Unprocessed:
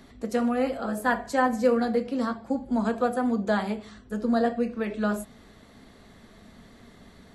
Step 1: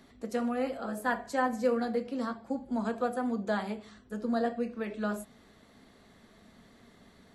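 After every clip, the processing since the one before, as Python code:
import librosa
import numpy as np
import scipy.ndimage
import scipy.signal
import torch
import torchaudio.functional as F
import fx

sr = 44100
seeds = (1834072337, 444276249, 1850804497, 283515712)

y = fx.low_shelf(x, sr, hz=96.0, db=-7.0)
y = y * 10.0 ** (-5.5 / 20.0)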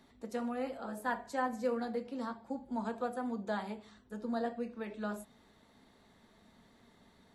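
y = fx.small_body(x, sr, hz=(900.0, 3700.0), ring_ms=30, db=8)
y = y * 10.0 ** (-6.0 / 20.0)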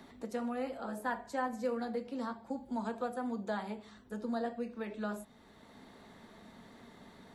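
y = fx.band_squash(x, sr, depth_pct=40)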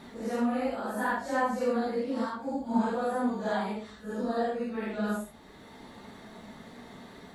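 y = fx.phase_scramble(x, sr, seeds[0], window_ms=200)
y = y * 10.0 ** (7.5 / 20.0)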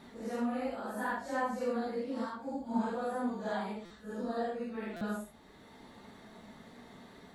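y = fx.buffer_glitch(x, sr, at_s=(3.85, 4.96), block=256, repeats=8)
y = y * 10.0 ** (-5.5 / 20.0)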